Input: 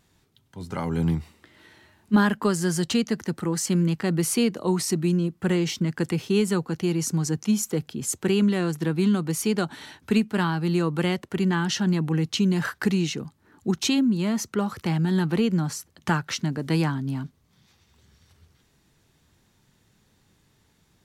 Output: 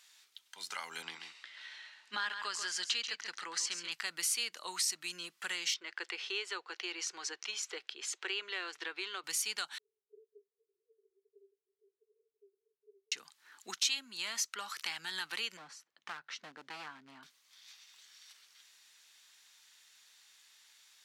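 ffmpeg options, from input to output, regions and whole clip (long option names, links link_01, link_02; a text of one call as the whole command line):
ffmpeg -i in.wav -filter_complex "[0:a]asettb=1/sr,asplit=3[link_01][link_02][link_03];[link_01]atrim=end=1.024[link_04];[link_02]atrim=start=1.02:end=3.92,asetpts=PTS-STARTPTS,afade=type=in:duration=0.004:curve=qsin,afade=type=out:start_time=2.896:duration=0.004:curve=qsin,highpass=200,lowpass=5100,aecho=1:1:136:0.316,atrim=end_sample=127890[link_05];[link_03]atrim=start=3.916[link_06];[link_04][link_05]acrossfade=duration=0.004:curve1=hsin:curve2=qsin[link_07];[link_07][link_06]acrossfade=duration=0.004:curve1=qsin:curve2=hsin,asettb=1/sr,asplit=3[link_08][link_09][link_10];[link_08]atrim=end=5.744[link_11];[link_09]atrim=start=5.74:end=9.24,asetpts=PTS-STARTPTS,afade=type=in:duration=0.004:curve=qsin,afade=type=out:start_time=3.496:duration=0.004:curve=qsin,lowpass=3400,lowshelf=frequency=270:width_type=q:width=3:gain=-11[link_12];[link_10]atrim=start=9.236[link_13];[link_11][link_12]acrossfade=duration=0.004:curve1=hsin:curve2=qsin[link_14];[link_14][link_13]acrossfade=duration=0.004:curve1=qsin:curve2=hsin,asettb=1/sr,asplit=3[link_15][link_16][link_17];[link_15]atrim=end=9.784[link_18];[link_16]atrim=start=9.78:end=13.12,asetpts=PTS-STARTPTS,afade=type=in:duration=0.004:curve=qsin,afade=type=out:start_time=3.336:duration=0.004:curve=qsin,acompressor=threshold=-26dB:ratio=4:attack=3.2:release=140:knee=1:detection=peak,asuperpass=centerf=420:order=12:qfactor=6.7[link_19];[link_17]atrim=start=13.116[link_20];[link_18][link_19]acrossfade=duration=0.004:curve1=hsin:curve2=qsin[link_21];[link_21][link_20]acrossfade=duration=0.004:curve1=qsin:curve2=hsin,asettb=1/sr,asplit=3[link_22][link_23][link_24];[link_22]atrim=end=15.574[link_25];[link_23]atrim=start=15.57:end=17.23,asetpts=PTS-STARTPTS,afade=type=in:duration=0.004:curve=qsin,afade=type=out:start_time=1.656:duration=0.004:curve=qsin,bandpass=frequency=220:width_type=q:width=0.64,asoftclip=type=hard:threshold=-24dB[link_26];[link_24]atrim=start=17.226[link_27];[link_25][link_26]acrossfade=duration=0.004:curve1=hsin:curve2=qsin[link_28];[link_28][link_27]acrossfade=duration=0.004:curve1=qsin:curve2=hsin,highpass=1400,acompressor=threshold=-46dB:ratio=2,equalizer=frequency=4600:width=0.39:gain=8.5" out.wav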